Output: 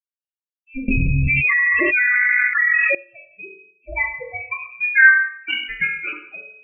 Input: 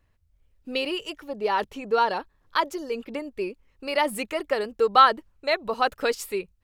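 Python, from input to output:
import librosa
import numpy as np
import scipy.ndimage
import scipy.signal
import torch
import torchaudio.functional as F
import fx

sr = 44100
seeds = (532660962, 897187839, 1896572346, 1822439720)

p1 = fx.bin_expand(x, sr, power=2.0)
p2 = scipy.signal.sosfilt(scipy.signal.butter(2, 760.0, 'highpass', fs=sr, output='sos'), p1)
p3 = p2 + fx.room_flutter(p2, sr, wall_m=4.1, rt60_s=0.34, dry=0)
p4 = fx.spec_topn(p3, sr, count=8)
p5 = fx.sample_hold(p4, sr, seeds[0], rate_hz=2000.0, jitter_pct=0, at=(5.48, 6.13))
p6 = fx.env_lowpass_down(p5, sr, base_hz=1500.0, full_db=-27.0)
p7 = fx.rev_schroeder(p6, sr, rt60_s=0.7, comb_ms=33, drr_db=5.0)
p8 = fx.freq_invert(p7, sr, carrier_hz=2900)
p9 = fx.env_flatten(p8, sr, amount_pct=100, at=(0.88, 2.95))
y = F.gain(torch.from_numpy(p9), 6.0).numpy()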